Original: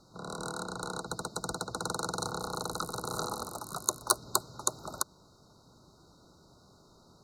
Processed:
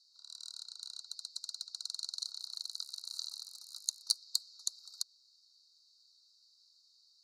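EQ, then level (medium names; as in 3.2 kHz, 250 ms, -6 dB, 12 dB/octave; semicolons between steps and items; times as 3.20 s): band-pass filter 4.5 kHz, Q 6.4; differentiator; +10.0 dB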